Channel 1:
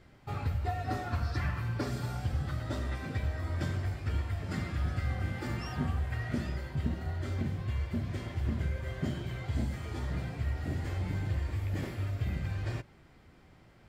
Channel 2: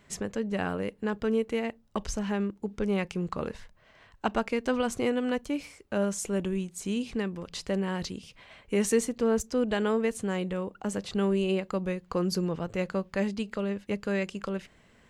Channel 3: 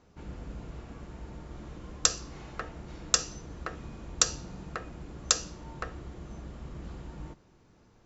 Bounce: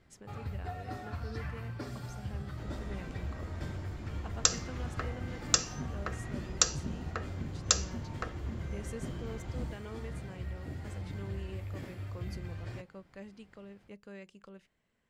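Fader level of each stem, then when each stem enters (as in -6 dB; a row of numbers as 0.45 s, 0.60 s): -7.0 dB, -19.0 dB, -1.5 dB; 0.00 s, 0.00 s, 2.40 s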